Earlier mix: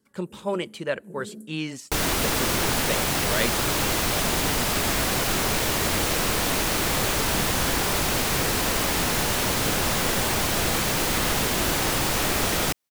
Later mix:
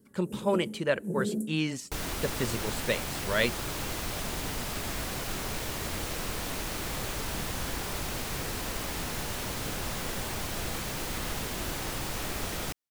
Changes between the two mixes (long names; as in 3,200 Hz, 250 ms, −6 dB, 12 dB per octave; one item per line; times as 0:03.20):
first sound +8.5 dB
second sound −11.5 dB
master: add low-shelf EQ 110 Hz +6 dB